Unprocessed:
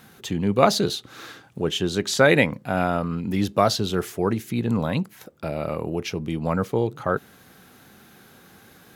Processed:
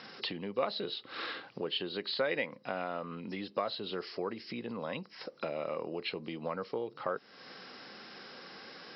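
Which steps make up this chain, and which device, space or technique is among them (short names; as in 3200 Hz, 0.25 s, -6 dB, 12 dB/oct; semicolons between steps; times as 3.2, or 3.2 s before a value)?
hearing aid with frequency lowering (nonlinear frequency compression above 3800 Hz 4:1; compressor 4:1, threshold -36 dBFS, peak gain reduction 20.5 dB; speaker cabinet 250–5300 Hz, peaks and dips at 520 Hz +6 dB, 1100 Hz +5 dB, 2000 Hz +5 dB, 2900 Hz +6 dB)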